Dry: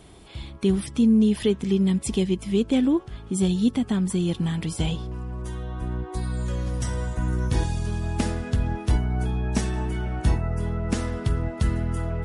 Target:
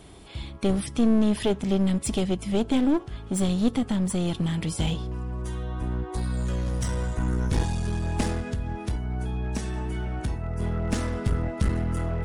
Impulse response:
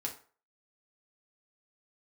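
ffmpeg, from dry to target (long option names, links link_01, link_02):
-filter_complex "[0:a]asplit=3[link_01][link_02][link_03];[link_01]afade=type=out:start_time=8.41:duration=0.02[link_04];[link_02]acompressor=threshold=-28dB:ratio=3,afade=type=in:start_time=8.41:duration=0.02,afade=type=out:start_time=10.59:duration=0.02[link_05];[link_03]afade=type=in:start_time=10.59:duration=0.02[link_06];[link_04][link_05][link_06]amix=inputs=3:normalize=0,aeval=exprs='clip(val(0),-1,0.0562)':channel_layout=same,asplit=2[link_07][link_08];[1:a]atrim=start_sample=2205[link_09];[link_08][link_09]afir=irnorm=-1:irlink=0,volume=-16.5dB[link_10];[link_07][link_10]amix=inputs=2:normalize=0"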